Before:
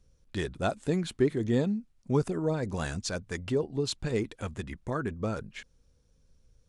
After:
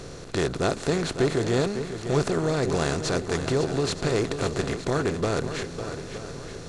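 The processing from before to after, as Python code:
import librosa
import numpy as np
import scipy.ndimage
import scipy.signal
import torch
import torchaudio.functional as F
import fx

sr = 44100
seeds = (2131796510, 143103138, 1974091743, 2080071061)

p1 = fx.bin_compress(x, sr, power=0.4)
p2 = fx.peak_eq(p1, sr, hz=220.0, db=-8.0, octaves=0.39)
y = p2 + fx.echo_swing(p2, sr, ms=919, ratio=1.5, feedback_pct=36, wet_db=-10.0, dry=0)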